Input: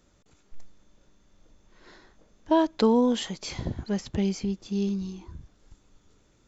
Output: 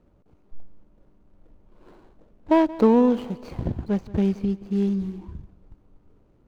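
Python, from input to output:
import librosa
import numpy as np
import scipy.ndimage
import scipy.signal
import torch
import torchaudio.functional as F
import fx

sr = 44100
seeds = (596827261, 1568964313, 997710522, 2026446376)

y = scipy.signal.medfilt(x, 25)
y = fx.high_shelf(y, sr, hz=4100.0, db=-9.0)
y = fx.echo_feedback(y, sr, ms=177, feedback_pct=42, wet_db=-19.5)
y = y * 10.0 ** (4.5 / 20.0)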